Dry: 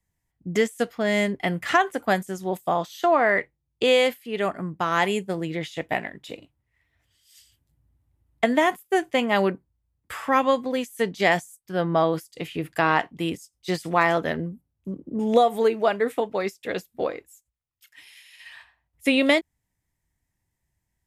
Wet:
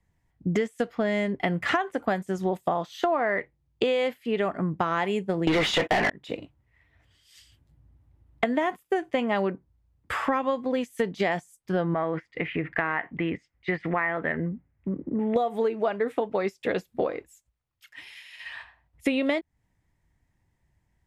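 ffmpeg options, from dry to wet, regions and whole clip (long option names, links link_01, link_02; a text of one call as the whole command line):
ffmpeg -i in.wav -filter_complex "[0:a]asettb=1/sr,asplit=3[link_01][link_02][link_03];[link_01]atrim=end=5.474[link_04];[link_02]atrim=start=5.47:end=6.1,asetpts=PTS-STARTPTS,afade=type=in:duration=0.004:curve=qsin,afade=type=out:start_time=0.626:duration=0.004:curve=qsin,agate=range=-29dB:threshold=-44dB:ratio=16:release=100:detection=peak,acontrast=47,asplit=2[link_05][link_06];[link_06]highpass=frequency=720:poles=1,volume=33dB,asoftclip=type=tanh:threshold=-6dB[link_07];[link_05][link_07]amix=inputs=2:normalize=0,lowpass=frequency=7400:poles=1,volume=-6dB[link_08];[link_03]atrim=start=6.096[link_09];[link_04][link_08]acrossfade=duration=0.004:curve1=hsin:curve2=qsin[link_10];[link_10][link_09]acrossfade=duration=0.004:curve1=qsin:curve2=hsin,asettb=1/sr,asplit=3[link_11][link_12][link_13];[link_11]atrim=end=11.944[link_14];[link_12]atrim=start=11.94:end=15.36,asetpts=PTS-STARTPTS,afade=type=in:duration=0.004:curve=qsin,afade=type=out:start_time=3.416:duration=0.004:curve=qsin,acompressor=threshold=-41dB:ratio=1.5:attack=3.2:release=140:knee=1:detection=peak,lowpass=frequency=2000:width_type=q:width=4.2[link_15];[link_13]atrim=start=15.356[link_16];[link_14][link_15]acrossfade=duration=0.004:curve1=hsin:curve2=qsin[link_17];[link_17][link_16]acrossfade=duration=0.004:curve1=qsin:curve2=hsin,aemphasis=mode=reproduction:type=75kf,acompressor=threshold=-31dB:ratio=6,volume=8dB" out.wav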